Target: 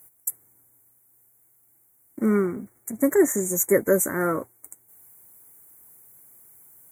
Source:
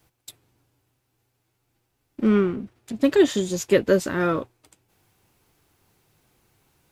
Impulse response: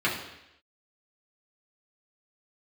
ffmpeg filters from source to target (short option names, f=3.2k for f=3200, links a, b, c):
-filter_complex "[0:a]afftfilt=real='re*(1-between(b*sr/4096,2300,5700))':imag='im*(1-between(b*sr/4096,2300,5700))':win_size=4096:overlap=0.75,atempo=1,acrossover=split=2000[a][b];[b]aexciter=amount=8.6:drive=6.5:freq=7.9k[c];[a][c]amix=inputs=2:normalize=0,highpass=f=150:p=1,volume=6dB,asoftclip=hard,volume=-6dB,volume=-1dB"